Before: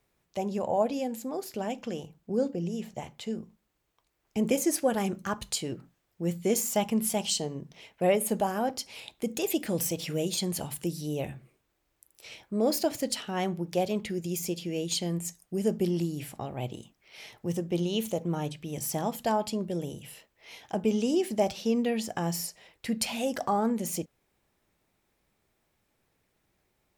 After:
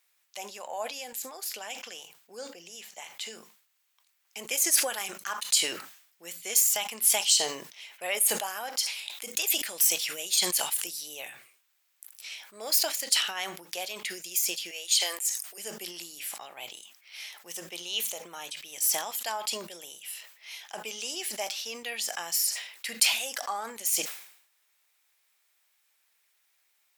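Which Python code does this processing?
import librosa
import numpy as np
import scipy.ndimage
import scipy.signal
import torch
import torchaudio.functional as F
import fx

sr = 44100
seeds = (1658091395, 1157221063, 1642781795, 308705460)

y = fx.highpass(x, sr, hz=440.0, slope=24, at=(14.71, 15.58))
y = scipy.signal.sosfilt(scipy.signal.bessel(2, 2000.0, 'highpass', norm='mag', fs=sr, output='sos'), y)
y = fx.high_shelf(y, sr, hz=8900.0, db=4.0)
y = fx.sustainer(y, sr, db_per_s=86.0)
y = y * 10.0 ** (6.5 / 20.0)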